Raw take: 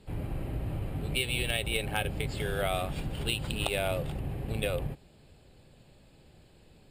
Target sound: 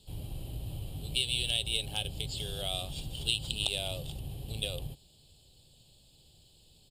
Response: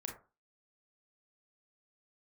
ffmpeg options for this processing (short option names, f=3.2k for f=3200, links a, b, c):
-filter_complex "[0:a]acrossover=split=8500[a][b];[b]acompressor=threshold=-58dB:ratio=4:attack=1:release=60[c];[a][c]amix=inputs=2:normalize=0,firequalizer=gain_entry='entry(120,0);entry(210,-6);entry(790,-5);entry(1400,-14);entry(2100,-13);entry(3100,11)':delay=0.05:min_phase=1,volume=-4.5dB"